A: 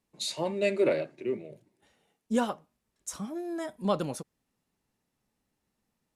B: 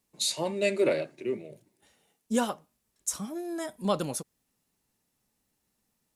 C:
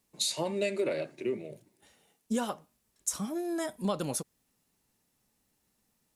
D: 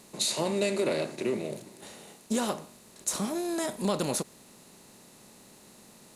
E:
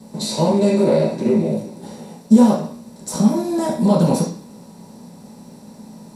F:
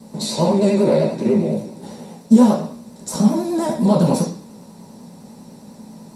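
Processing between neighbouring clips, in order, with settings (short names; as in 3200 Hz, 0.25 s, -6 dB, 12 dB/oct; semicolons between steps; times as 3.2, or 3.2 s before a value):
high shelf 5000 Hz +10.5 dB
compressor 6:1, threshold -29 dBFS, peak gain reduction 9 dB; gain +2 dB
per-bin compression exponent 0.6
reverb RT60 0.45 s, pre-delay 3 ms, DRR -9 dB; gain -6.5 dB
vibrato 10 Hz 58 cents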